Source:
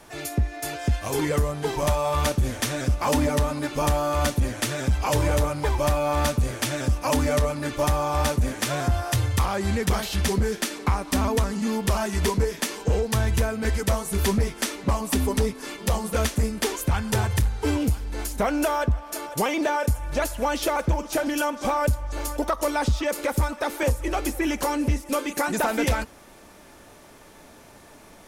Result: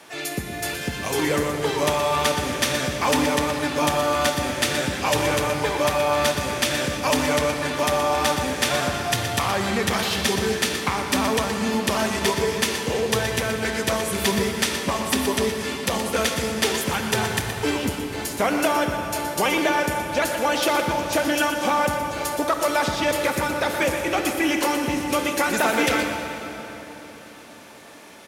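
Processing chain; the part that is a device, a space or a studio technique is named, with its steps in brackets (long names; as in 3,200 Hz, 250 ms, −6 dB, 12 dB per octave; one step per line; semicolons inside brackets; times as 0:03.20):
PA in a hall (high-pass filter 180 Hz 12 dB per octave; parametric band 2,900 Hz +6 dB 1.8 octaves; single-tap delay 121 ms −10 dB; convolution reverb RT60 3.8 s, pre-delay 43 ms, DRR 4.5 dB)
level +1 dB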